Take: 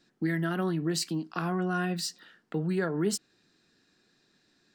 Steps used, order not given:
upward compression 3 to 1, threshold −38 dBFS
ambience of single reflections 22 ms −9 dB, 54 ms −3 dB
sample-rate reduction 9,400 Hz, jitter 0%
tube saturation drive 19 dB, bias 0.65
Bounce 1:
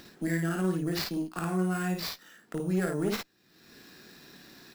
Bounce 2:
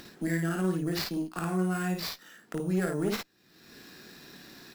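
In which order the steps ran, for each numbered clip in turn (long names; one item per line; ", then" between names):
upward compression, then tube saturation, then sample-rate reduction, then ambience of single reflections
sample-rate reduction, then tube saturation, then upward compression, then ambience of single reflections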